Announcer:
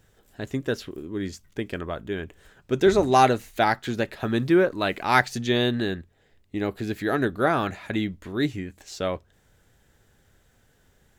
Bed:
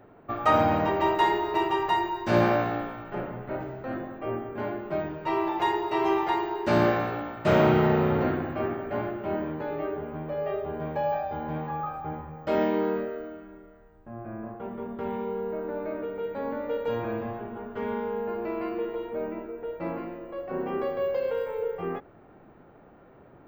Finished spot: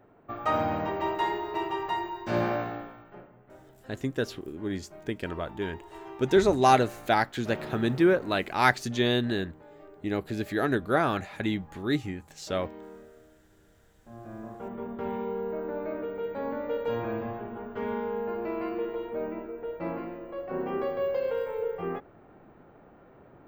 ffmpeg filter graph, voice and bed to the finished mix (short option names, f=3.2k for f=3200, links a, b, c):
-filter_complex "[0:a]adelay=3500,volume=-2.5dB[a];[1:a]volume=12.5dB,afade=t=out:st=2.62:d=0.67:silence=0.211349,afade=t=in:st=13.5:d=1.31:silence=0.125893[b];[a][b]amix=inputs=2:normalize=0"